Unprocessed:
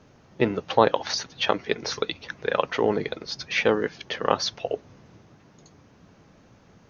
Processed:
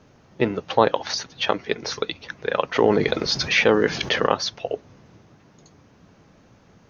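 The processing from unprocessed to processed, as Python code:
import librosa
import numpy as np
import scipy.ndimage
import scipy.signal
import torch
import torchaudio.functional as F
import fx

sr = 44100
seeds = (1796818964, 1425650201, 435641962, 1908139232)

y = fx.env_flatten(x, sr, amount_pct=50, at=(2.75, 4.26), fade=0.02)
y = y * librosa.db_to_amplitude(1.0)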